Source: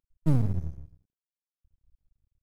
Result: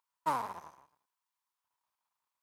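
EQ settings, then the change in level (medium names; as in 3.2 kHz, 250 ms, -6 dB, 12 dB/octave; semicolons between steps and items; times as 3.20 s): resonant high-pass 980 Hz, resonance Q 6.9; +4.5 dB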